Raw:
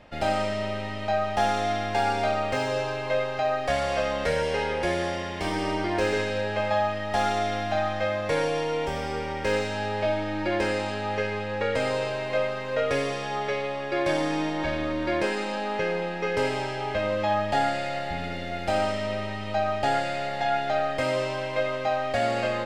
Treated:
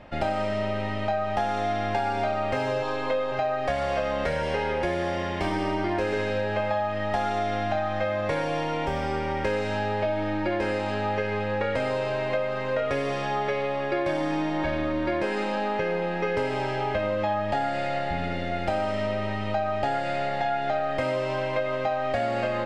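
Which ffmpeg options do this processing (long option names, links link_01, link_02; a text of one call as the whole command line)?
ffmpeg -i in.wav -filter_complex "[0:a]asettb=1/sr,asplit=3[link_01][link_02][link_03];[link_01]atrim=end=2.824[link_04];[link_02]atrim=start=2.82:end=3.32,asetpts=PTS-STARTPTS,afade=type=in:duration=0.004:curve=qsin,afade=type=out:start_time=0.496:duration=0.004:curve=qsin,aecho=1:1:4.1:0.66,atrim=end_sample=22050[link_05];[link_03]atrim=start=3.316[link_06];[link_04][link_05]acrossfade=duration=0.004:curve1=hsin:curve2=qsin[link_07];[link_07][link_06]acrossfade=duration=0.004:curve1=qsin:curve2=hsin,highshelf=frequency=3700:gain=-10.5,bandreject=frequency=460:width=15,acompressor=threshold=-28dB:ratio=6,volume=5dB" out.wav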